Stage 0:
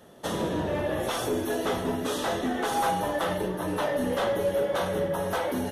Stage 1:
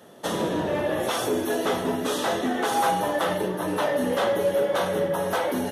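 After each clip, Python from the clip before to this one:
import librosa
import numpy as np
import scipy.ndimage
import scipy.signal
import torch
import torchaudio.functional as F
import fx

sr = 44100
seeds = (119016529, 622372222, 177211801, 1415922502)

y = scipy.signal.sosfilt(scipy.signal.bessel(2, 150.0, 'highpass', norm='mag', fs=sr, output='sos'), x)
y = y * librosa.db_to_amplitude(3.5)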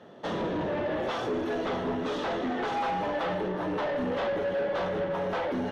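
y = 10.0 ** (-25.5 / 20.0) * np.tanh(x / 10.0 ** (-25.5 / 20.0))
y = fx.air_absorb(y, sr, metres=200.0)
y = y + 10.0 ** (-16.0 / 20.0) * np.pad(y, (int(357 * sr / 1000.0), 0))[:len(y)]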